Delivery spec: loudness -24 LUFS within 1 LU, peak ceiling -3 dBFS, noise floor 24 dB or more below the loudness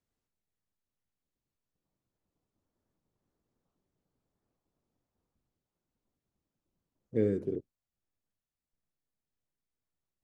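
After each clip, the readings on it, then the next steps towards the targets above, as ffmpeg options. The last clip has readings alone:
loudness -33.0 LUFS; peak -16.5 dBFS; loudness target -24.0 LUFS
-> -af "volume=9dB"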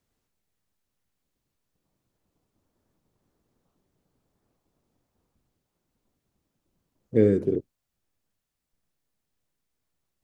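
loudness -24.0 LUFS; peak -7.5 dBFS; noise floor -82 dBFS

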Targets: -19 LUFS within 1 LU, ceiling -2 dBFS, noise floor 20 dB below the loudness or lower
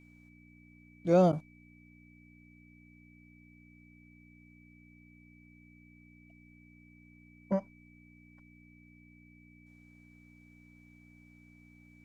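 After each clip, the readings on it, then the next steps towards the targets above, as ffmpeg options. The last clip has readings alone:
hum 60 Hz; harmonics up to 300 Hz; hum level -58 dBFS; steady tone 2300 Hz; tone level -62 dBFS; loudness -29.5 LUFS; peak -14.0 dBFS; loudness target -19.0 LUFS
-> -af "bandreject=f=60:t=h:w=4,bandreject=f=120:t=h:w=4,bandreject=f=180:t=h:w=4,bandreject=f=240:t=h:w=4,bandreject=f=300:t=h:w=4"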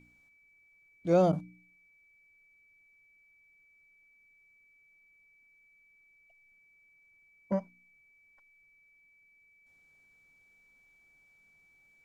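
hum none; steady tone 2300 Hz; tone level -62 dBFS
-> -af "bandreject=f=2.3k:w=30"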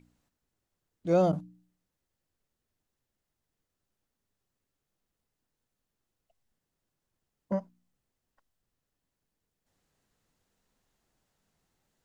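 steady tone none; loudness -29.5 LUFS; peak -14.0 dBFS; loudness target -19.0 LUFS
-> -af "volume=10.5dB"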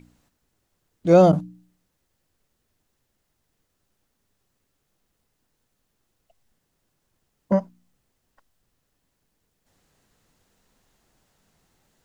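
loudness -19.0 LUFS; peak -3.5 dBFS; noise floor -75 dBFS

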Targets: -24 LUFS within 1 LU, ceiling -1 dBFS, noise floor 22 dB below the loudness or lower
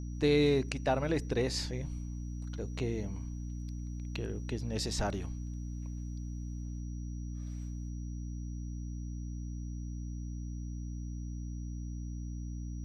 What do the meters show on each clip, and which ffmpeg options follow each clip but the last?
hum 60 Hz; harmonics up to 300 Hz; hum level -37 dBFS; steady tone 5800 Hz; tone level -60 dBFS; loudness -37.0 LUFS; peak -16.0 dBFS; loudness target -24.0 LUFS
-> -af "bandreject=f=60:t=h:w=6,bandreject=f=120:t=h:w=6,bandreject=f=180:t=h:w=6,bandreject=f=240:t=h:w=6,bandreject=f=300:t=h:w=6"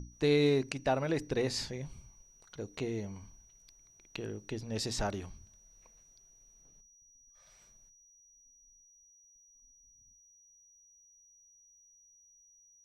hum none; steady tone 5800 Hz; tone level -60 dBFS
-> -af "bandreject=f=5.8k:w=30"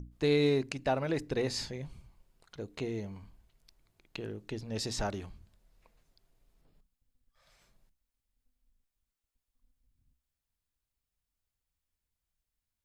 steady tone none; loudness -33.5 LUFS; peak -17.0 dBFS; loudness target -24.0 LUFS
-> -af "volume=9.5dB"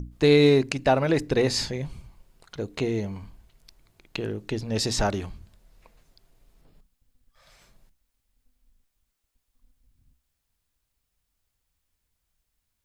loudness -24.5 LUFS; peak -7.5 dBFS; noise floor -79 dBFS

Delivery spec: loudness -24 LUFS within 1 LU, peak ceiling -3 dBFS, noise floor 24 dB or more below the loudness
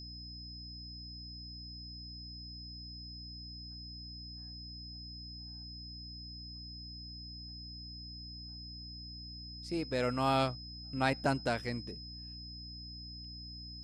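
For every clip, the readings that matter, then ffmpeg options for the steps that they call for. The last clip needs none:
hum 60 Hz; harmonics up to 300 Hz; hum level -47 dBFS; steady tone 5100 Hz; tone level -47 dBFS; loudness -40.0 LUFS; peak -16.5 dBFS; loudness target -24.0 LUFS
-> -af "bandreject=f=60:t=h:w=4,bandreject=f=120:t=h:w=4,bandreject=f=180:t=h:w=4,bandreject=f=240:t=h:w=4,bandreject=f=300:t=h:w=4"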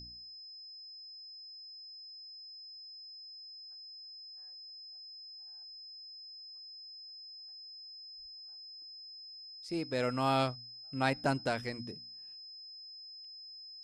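hum none; steady tone 5100 Hz; tone level -47 dBFS
-> -af "bandreject=f=5.1k:w=30"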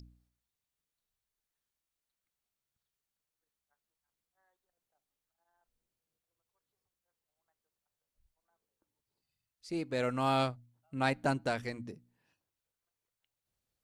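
steady tone none; loudness -33.5 LUFS; peak -16.5 dBFS; loudness target -24.0 LUFS
-> -af "volume=9.5dB"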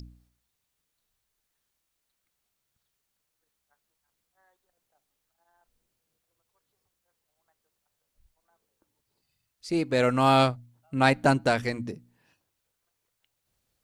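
loudness -24.5 LUFS; peak -7.0 dBFS; noise floor -80 dBFS

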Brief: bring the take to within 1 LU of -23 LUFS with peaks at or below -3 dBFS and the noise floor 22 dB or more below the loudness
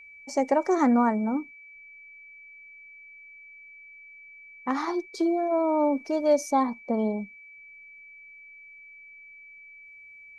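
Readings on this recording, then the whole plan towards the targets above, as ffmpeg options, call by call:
steady tone 2300 Hz; tone level -46 dBFS; loudness -25.5 LUFS; peak -12.0 dBFS; loudness target -23.0 LUFS
-> -af "bandreject=f=2.3k:w=30"
-af "volume=2.5dB"

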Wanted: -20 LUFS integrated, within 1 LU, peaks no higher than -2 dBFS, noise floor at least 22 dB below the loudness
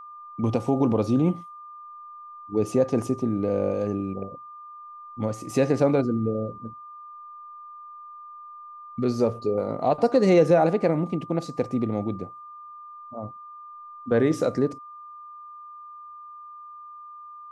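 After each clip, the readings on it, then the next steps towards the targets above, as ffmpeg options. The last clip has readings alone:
steady tone 1200 Hz; tone level -40 dBFS; loudness -24.5 LUFS; peak -7.5 dBFS; loudness target -20.0 LUFS
-> -af "bandreject=f=1.2k:w=30"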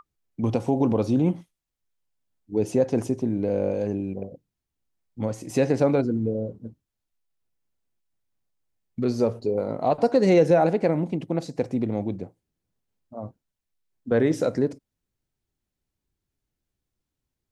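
steady tone none; loudness -24.5 LUFS; peak -7.5 dBFS; loudness target -20.0 LUFS
-> -af "volume=4.5dB"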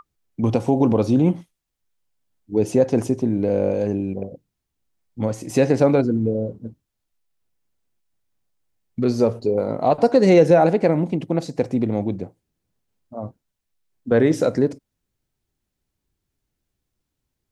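loudness -20.0 LUFS; peak -3.0 dBFS; noise floor -80 dBFS

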